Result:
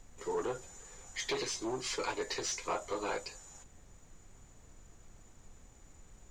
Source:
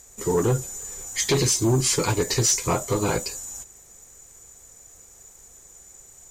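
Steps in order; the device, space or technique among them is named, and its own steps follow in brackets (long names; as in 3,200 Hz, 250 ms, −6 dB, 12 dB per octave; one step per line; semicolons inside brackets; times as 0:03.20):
aircraft cabin announcement (band-pass filter 480–4,000 Hz; soft clipping −17 dBFS, distortion −21 dB; brown noise bed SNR 14 dB)
level −7.5 dB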